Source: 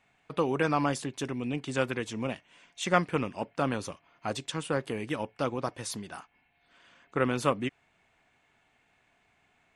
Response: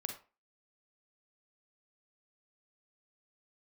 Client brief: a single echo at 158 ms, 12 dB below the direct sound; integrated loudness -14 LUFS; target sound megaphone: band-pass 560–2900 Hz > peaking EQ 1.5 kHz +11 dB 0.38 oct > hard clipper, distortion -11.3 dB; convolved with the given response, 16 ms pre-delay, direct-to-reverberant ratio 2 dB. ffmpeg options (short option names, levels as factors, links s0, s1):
-filter_complex "[0:a]aecho=1:1:158:0.251,asplit=2[s0][s1];[1:a]atrim=start_sample=2205,adelay=16[s2];[s1][s2]afir=irnorm=-1:irlink=0,volume=0.841[s3];[s0][s3]amix=inputs=2:normalize=0,highpass=560,lowpass=2900,equalizer=f=1500:t=o:w=0.38:g=11,asoftclip=type=hard:threshold=0.133,volume=6.31"